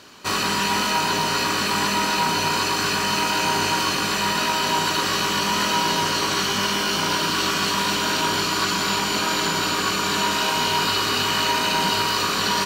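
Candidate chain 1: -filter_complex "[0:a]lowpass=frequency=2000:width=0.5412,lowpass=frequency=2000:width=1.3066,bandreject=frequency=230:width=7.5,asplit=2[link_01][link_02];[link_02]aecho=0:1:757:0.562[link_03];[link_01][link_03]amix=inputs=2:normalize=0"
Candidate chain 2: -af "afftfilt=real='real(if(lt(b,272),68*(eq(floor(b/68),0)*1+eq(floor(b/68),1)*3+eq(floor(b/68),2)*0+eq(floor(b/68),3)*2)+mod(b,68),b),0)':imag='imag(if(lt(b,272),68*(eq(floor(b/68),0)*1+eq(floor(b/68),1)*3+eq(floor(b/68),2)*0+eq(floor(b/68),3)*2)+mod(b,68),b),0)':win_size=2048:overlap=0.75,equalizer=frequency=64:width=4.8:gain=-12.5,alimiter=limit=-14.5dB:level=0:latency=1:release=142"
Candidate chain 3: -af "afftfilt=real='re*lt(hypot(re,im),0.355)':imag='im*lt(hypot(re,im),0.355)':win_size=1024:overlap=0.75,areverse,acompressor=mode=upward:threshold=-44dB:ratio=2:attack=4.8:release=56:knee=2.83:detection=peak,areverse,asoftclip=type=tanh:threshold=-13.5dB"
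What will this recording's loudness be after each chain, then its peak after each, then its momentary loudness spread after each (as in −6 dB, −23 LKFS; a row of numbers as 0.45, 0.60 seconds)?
−23.0, −22.0, −22.0 LKFS; −9.5, −14.5, −14.0 dBFS; 2, 1, 1 LU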